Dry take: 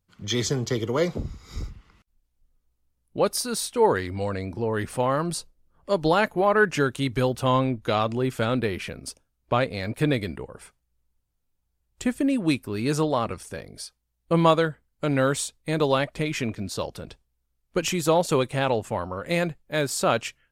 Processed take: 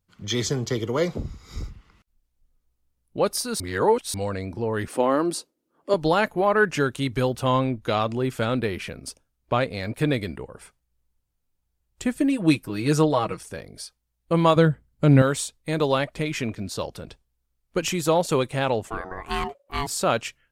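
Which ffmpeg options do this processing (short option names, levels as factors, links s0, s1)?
-filter_complex "[0:a]asettb=1/sr,asplit=3[s0][s1][s2];[s0]atrim=end=4.884[s3];[s1]atrim=start=4.88:end=5.94,asetpts=PTS-STARTPTS,afade=t=in:d=0.004:c=qsin,afade=t=out:st=1.056:d=0.004:c=qsin,highpass=f=300:t=q:w=2.8[s4];[s2]atrim=start=5.936[s5];[s3][s4]acrossfade=d=0.004:c1=hsin:c2=qsin[s6];[s6][s5]acrossfade=d=0.004:c1=qsin:c2=hsin,asettb=1/sr,asplit=3[s7][s8][s9];[s7]atrim=end=12.164[s10];[s8]atrim=start=12.16:end=13.41,asetpts=PTS-STARTPTS,afade=t=in:d=0.004:c=qsin,afade=t=out:st=1.246:d=0.004:c=qsin,aecho=1:1:6.3:0.74,atrim=end_sample=55125[s11];[s9]atrim=start=13.406[s12];[s10][s11]acrossfade=d=0.004:c1=hsin:c2=qsin[s13];[s13][s12]acrossfade=d=0.004:c1=qsin:c2=hsin,asettb=1/sr,asplit=3[s14][s15][s16];[s14]atrim=end=14.564[s17];[s15]atrim=start=14.56:end=15.22,asetpts=PTS-STARTPTS,afade=t=in:d=0.004:c=qsin,afade=t=out:st=0.656:d=0.004:c=qsin,equalizer=f=100:w=0.35:g=13[s18];[s16]atrim=start=15.216[s19];[s17][s18]acrossfade=d=0.004:c1=hsin:c2=qsin[s20];[s20][s19]acrossfade=d=0.004:c1=qsin:c2=hsin,asettb=1/sr,asplit=3[s21][s22][s23];[s21]atrim=end=18.874[s24];[s22]atrim=start=18.87:end=19.87,asetpts=PTS-STARTPTS,afade=t=in:d=0.004:c=qsin,afade=t=out:st=0.996:d=0.004:c=qsin,aeval=exprs='val(0)*sin(2*PI*560*n/s)':c=same[s25];[s23]atrim=start=19.866[s26];[s24][s25]acrossfade=d=0.004:c1=hsin:c2=qsin[s27];[s27][s26]acrossfade=d=0.004:c1=qsin:c2=hsin,asplit=3[s28][s29][s30];[s28]atrim=end=3.602[s31];[s29]atrim=start=3.598:end=4.142,asetpts=PTS-STARTPTS,areverse[s32];[s30]atrim=start=4.138[s33];[s31][s32]acrossfade=d=0.004:c1=hsin:c2=hsin[s34];[s34][s33]acrossfade=d=0.004:c1=hsin:c2=hsin"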